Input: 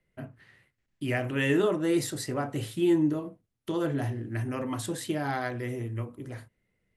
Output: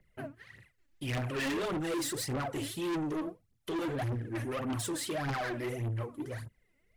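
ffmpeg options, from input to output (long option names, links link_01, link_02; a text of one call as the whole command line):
ffmpeg -i in.wav -af "aphaser=in_gain=1:out_gain=1:delay=3.7:decay=0.75:speed=1.7:type=triangular,asoftclip=type=tanh:threshold=-31dB" out.wav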